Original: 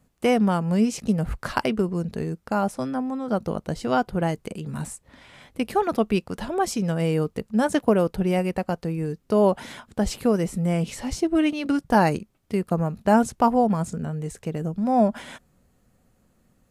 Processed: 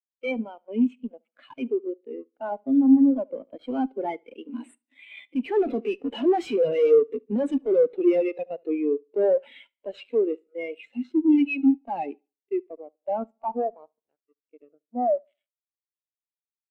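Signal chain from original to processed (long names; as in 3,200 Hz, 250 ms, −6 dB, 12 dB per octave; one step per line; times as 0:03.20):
source passing by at 0:06.25, 15 m/s, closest 9.3 metres
elliptic high-pass filter 250 Hz, stop band 40 dB
flat-topped bell 2,900 Hz +14 dB 1.2 octaves
in parallel at −5 dB: decimation without filtering 8×
on the sum: fuzz pedal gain 42 dB, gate −52 dBFS
repeating echo 72 ms, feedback 52%, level −13.5 dB
every bin expanded away from the loudest bin 2.5 to 1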